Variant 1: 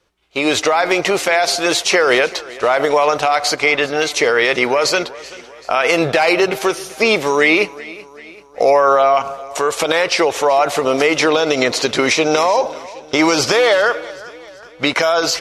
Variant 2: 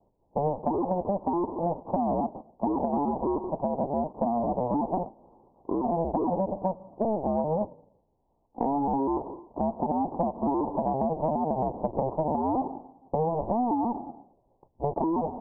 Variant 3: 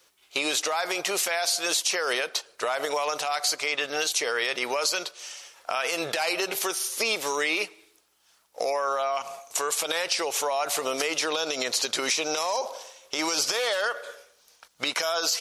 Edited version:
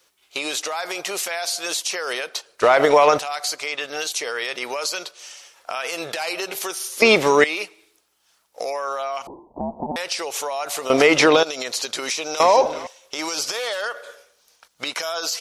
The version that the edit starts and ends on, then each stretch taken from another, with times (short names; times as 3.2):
3
2.62–3.19 from 1
7.02–7.44 from 1
9.27–9.96 from 2
10.9–11.43 from 1
12.4–12.87 from 1